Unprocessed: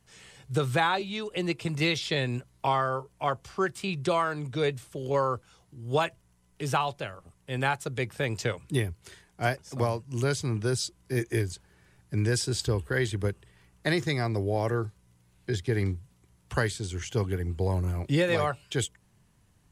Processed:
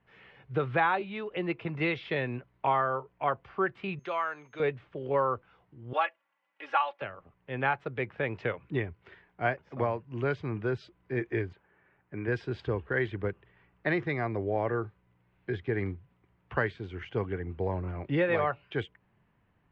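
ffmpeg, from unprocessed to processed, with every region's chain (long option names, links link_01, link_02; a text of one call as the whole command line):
ffmpeg -i in.wav -filter_complex "[0:a]asettb=1/sr,asplit=3[link_01][link_02][link_03];[link_01]atrim=end=3.994[link_04];[link_02]atrim=start=3.99:end=4.6,asetpts=PTS-STARTPTS,afade=type=in:duration=0.004:curve=qsin,afade=type=out:start_time=0.606:duration=0.004:curve=qsin,highpass=frequency=1200:poles=1,aeval=exprs='val(0)+0.0112*sin(2*PI*6400*n/s)':channel_layout=same[link_05];[link_03]atrim=start=4.596[link_06];[link_04][link_05]acrossfade=duration=0.004:curve1=hsin:curve2=qsin[link_07];[link_07][link_06]acrossfade=duration=0.004:curve1=qsin:curve2=hsin,asettb=1/sr,asplit=3[link_08][link_09][link_10];[link_08]atrim=end=5.934[link_11];[link_09]atrim=start=5.93:end=7.02,asetpts=PTS-STARTPTS,afade=type=in:duration=0.004:curve=qsin,afade=type=out:start_time=1.086:duration=0.004:curve=qsin,highpass=770,aecho=1:1:3.6:0.81,atrim=end_sample=48069[link_12];[link_10]atrim=start=7.016[link_13];[link_11][link_12]acrossfade=duration=0.004:curve1=hsin:curve2=qsin[link_14];[link_14][link_13]acrossfade=duration=0.004:curve1=qsin:curve2=hsin,asettb=1/sr,asplit=3[link_15][link_16][link_17];[link_15]atrim=end=11.534[link_18];[link_16]atrim=start=11.53:end=12.28,asetpts=PTS-STARTPTS,afade=type=in:duration=0.004:curve=qsin,afade=type=out:start_time=0.746:duration=0.004:curve=qsin,lowpass=2500,lowshelf=frequency=170:gain=-11[link_19];[link_17]atrim=start=12.276[link_20];[link_18][link_19]acrossfade=duration=0.004:curve1=hsin:curve2=qsin[link_21];[link_21][link_20]acrossfade=duration=0.004:curve1=qsin:curve2=hsin,lowpass=frequency=2500:width=0.5412,lowpass=frequency=2500:width=1.3066,lowshelf=frequency=160:gain=-10" out.wav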